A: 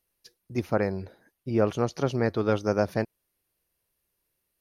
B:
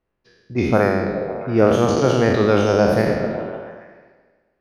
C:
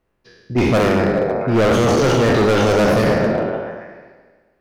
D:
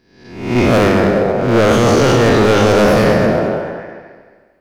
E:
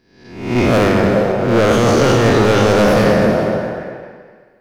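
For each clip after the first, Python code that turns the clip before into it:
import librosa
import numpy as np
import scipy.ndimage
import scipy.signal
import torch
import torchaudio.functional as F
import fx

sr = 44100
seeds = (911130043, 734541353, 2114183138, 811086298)

y1 = fx.spec_trails(x, sr, decay_s=1.45)
y1 = fx.echo_stepped(y1, sr, ms=138, hz=180.0, octaves=0.7, feedback_pct=70, wet_db=-2.5)
y1 = fx.env_lowpass(y1, sr, base_hz=1500.0, full_db=-17.0)
y1 = y1 * 10.0 ** (6.0 / 20.0)
y2 = np.clip(10.0 ** (19.0 / 20.0) * y1, -1.0, 1.0) / 10.0 ** (19.0 / 20.0)
y2 = y2 * 10.0 ** (7.0 / 20.0)
y3 = fx.spec_swells(y2, sr, rise_s=0.69)
y3 = fx.echo_feedback(y3, sr, ms=220, feedback_pct=30, wet_db=-11.5)
y3 = y3 * 10.0 ** (2.0 / 20.0)
y4 = fx.rev_gated(y3, sr, seeds[0], gate_ms=460, shape='rising', drr_db=11.0)
y4 = y4 * 10.0 ** (-1.5 / 20.0)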